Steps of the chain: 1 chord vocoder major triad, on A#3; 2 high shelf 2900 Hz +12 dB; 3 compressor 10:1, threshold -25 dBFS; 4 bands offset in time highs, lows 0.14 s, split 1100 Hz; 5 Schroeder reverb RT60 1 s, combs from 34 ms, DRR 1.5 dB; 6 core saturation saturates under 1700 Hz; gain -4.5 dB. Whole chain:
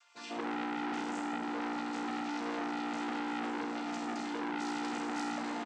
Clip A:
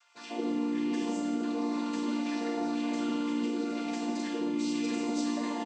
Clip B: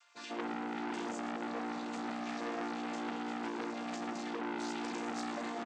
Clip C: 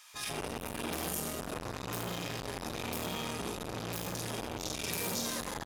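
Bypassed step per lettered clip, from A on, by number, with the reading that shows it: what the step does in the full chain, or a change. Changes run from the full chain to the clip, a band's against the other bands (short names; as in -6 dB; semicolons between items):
6, crest factor change -4.5 dB; 5, 500 Hz band +3.0 dB; 1, 125 Hz band +14.0 dB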